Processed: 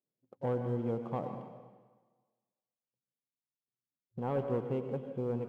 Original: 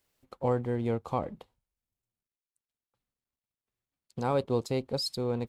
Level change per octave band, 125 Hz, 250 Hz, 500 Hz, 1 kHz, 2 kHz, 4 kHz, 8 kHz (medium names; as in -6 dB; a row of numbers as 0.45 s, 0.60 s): -3.5 dB, -3.5 dB, -4.0 dB, -6.5 dB, -7.5 dB, under -25 dB, under -25 dB